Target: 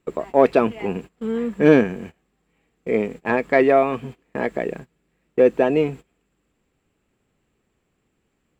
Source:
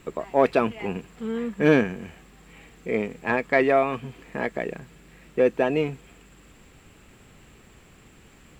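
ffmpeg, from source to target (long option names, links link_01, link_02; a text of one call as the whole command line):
ffmpeg -i in.wav -af "agate=range=-21dB:threshold=-38dB:ratio=16:detection=peak,equalizer=frequency=380:width_type=o:width=2.5:gain=5.5" out.wav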